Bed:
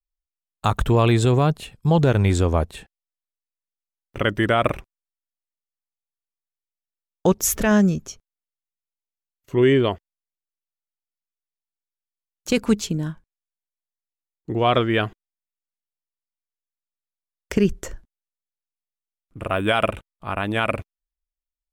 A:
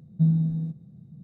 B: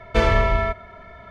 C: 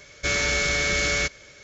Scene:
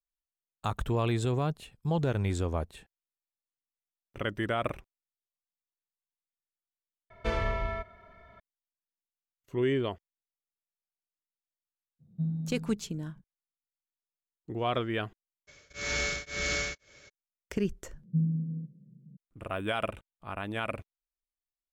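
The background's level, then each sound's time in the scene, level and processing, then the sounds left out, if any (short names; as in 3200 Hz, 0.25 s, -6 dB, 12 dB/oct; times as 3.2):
bed -11.5 dB
7.1 replace with B -12.5 dB
11.99 add A -11 dB, fades 0.02 s
15.47 add C -6.5 dB, fades 0.02 s + beating tremolo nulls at 1.9 Hz
17.94 add A -7 dB + FFT band-pass 120–620 Hz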